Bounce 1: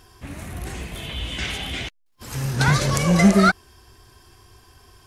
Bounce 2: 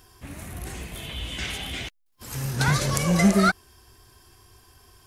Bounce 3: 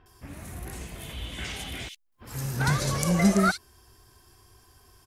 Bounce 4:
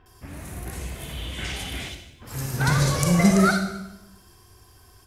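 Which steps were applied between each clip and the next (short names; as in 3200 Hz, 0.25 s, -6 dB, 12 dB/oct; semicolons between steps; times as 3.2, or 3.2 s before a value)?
high shelf 9800 Hz +9.5 dB; gain -4 dB
bands offset in time lows, highs 60 ms, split 2800 Hz; gain -2.5 dB
reverb RT60 0.90 s, pre-delay 34 ms, DRR 5 dB; gain +2.5 dB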